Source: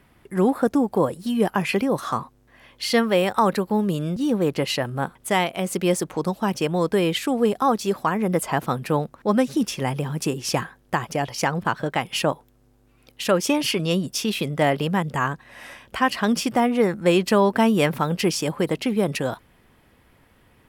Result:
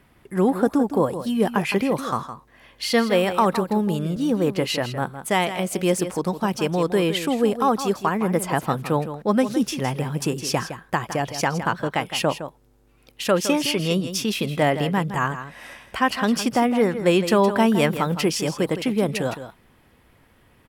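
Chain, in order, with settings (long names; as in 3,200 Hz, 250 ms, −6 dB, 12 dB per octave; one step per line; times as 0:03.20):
single-tap delay 162 ms −11 dB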